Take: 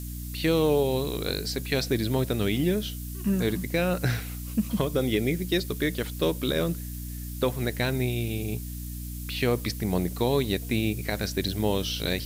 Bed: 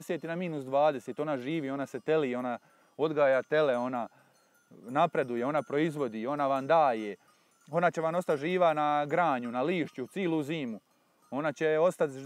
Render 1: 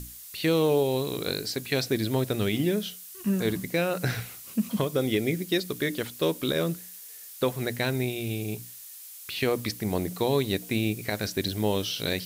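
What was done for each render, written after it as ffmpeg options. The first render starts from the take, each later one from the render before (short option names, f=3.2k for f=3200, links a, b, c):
-af "bandreject=f=60:t=h:w=6,bandreject=f=120:t=h:w=6,bandreject=f=180:t=h:w=6,bandreject=f=240:t=h:w=6,bandreject=f=300:t=h:w=6"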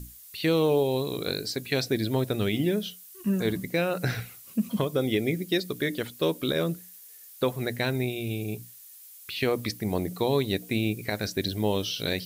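-af "afftdn=nr=7:nf=-45"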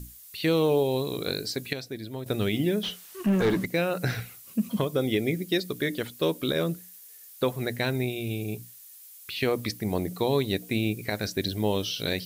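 -filter_complex "[0:a]asettb=1/sr,asplit=3[a][b][c];[a]atrim=end=2.834[d];[b]atrim=start=2.83:end=3.66,asetpts=PTS-STARTPTS,afade=t=in:d=0.004:c=qsin,afade=t=out:st=0.826:d=0.004:c=qsin,asplit=2[e][f];[f]highpass=f=720:p=1,volume=24dB,asoftclip=type=tanh:threshold=-14dB[g];[e][g]amix=inputs=2:normalize=0,lowpass=f=1.3k:p=1,volume=-6dB[h];[c]atrim=start=3.656[i];[d][h]acrossfade=d=0.004:c1=hsin:c2=qsin[j];[j][i]acrossfade=d=0.004:c1=qsin:c2=hsin,asplit=3[k][l][m];[k]atrim=end=1.732[n];[l]atrim=start=1.728:end=2.262,asetpts=PTS-STARTPTS,volume=-10dB[o];[m]atrim=start=2.258[p];[n][o]acrossfade=d=0.004:c1=hsin:c2=hsin[q];[q][p]acrossfade=d=0.004:c1=hsin:c2=hsin"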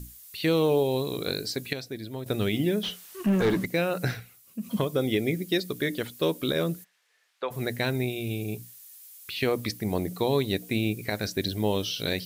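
-filter_complex "[0:a]asplit=3[a][b][c];[a]afade=t=out:st=6.83:d=0.02[d];[b]highpass=640,lowpass=2.4k,afade=t=in:st=6.83:d=0.02,afade=t=out:st=7.5:d=0.02[e];[c]afade=t=in:st=7.5:d=0.02[f];[d][e][f]amix=inputs=3:normalize=0,asplit=3[g][h][i];[g]atrim=end=4.2,asetpts=PTS-STARTPTS,afade=t=out:st=4.07:d=0.13:silence=0.375837[j];[h]atrim=start=4.2:end=4.6,asetpts=PTS-STARTPTS,volume=-8.5dB[k];[i]atrim=start=4.6,asetpts=PTS-STARTPTS,afade=t=in:d=0.13:silence=0.375837[l];[j][k][l]concat=n=3:v=0:a=1"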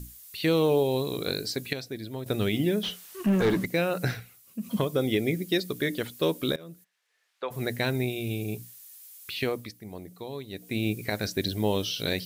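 -filter_complex "[0:a]asplit=4[a][b][c][d];[a]atrim=end=6.56,asetpts=PTS-STARTPTS,afade=t=out:st=6.556:d=0.004:c=hsin:silence=0.0668344[e];[b]atrim=start=6.56:end=9.72,asetpts=PTS-STARTPTS,afade=t=in:d=1.12:silence=0.0668344,afade=t=out:st=2.77:d=0.39:silence=0.223872[f];[c]atrim=start=9.72:end=10.51,asetpts=PTS-STARTPTS,volume=-13dB[g];[d]atrim=start=10.51,asetpts=PTS-STARTPTS,afade=t=in:d=0.39:silence=0.223872[h];[e][f][g][h]concat=n=4:v=0:a=1"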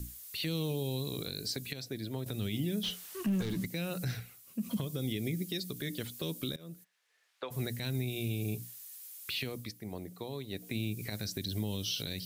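-filter_complex "[0:a]acrossover=split=230|3000[a][b][c];[b]acompressor=threshold=-39dB:ratio=6[d];[a][d][c]amix=inputs=3:normalize=0,alimiter=level_in=0.5dB:limit=-24dB:level=0:latency=1:release=129,volume=-0.5dB"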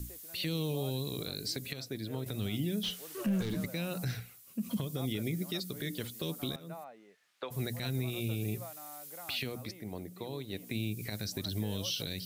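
-filter_complex "[1:a]volume=-23dB[a];[0:a][a]amix=inputs=2:normalize=0"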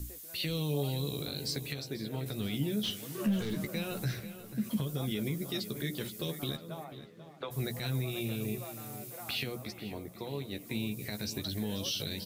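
-filter_complex "[0:a]asplit=2[a][b];[b]adelay=14,volume=-7dB[c];[a][c]amix=inputs=2:normalize=0,asplit=2[d][e];[e]adelay=489,lowpass=f=3.3k:p=1,volume=-12dB,asplit=2[f][g];[g]adelay=489,lowpass=f=3.3k:p=1,volume=0.53,asplit=2[h][i];[i]adelay=489,lowpass=f=3.3k:p=1,volume=0.53,asplit=2[j][k];[k]adelay=489,lowpass=f=3.3k:p=1,volume=0.53,asplit=2[l][m];[m]adelay=489,lowpass=f=3.3k:p=1,volume=0.53,asplit=2[n][o];[o]adelay=489,lowpass=f=3.3k:p=1,volume=0.53[p];[d][f][h][j][l][n][p]amix=inputs=7:normalize=0"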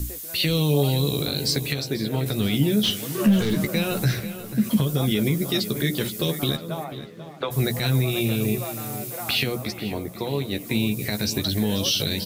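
-af "volume=12dB"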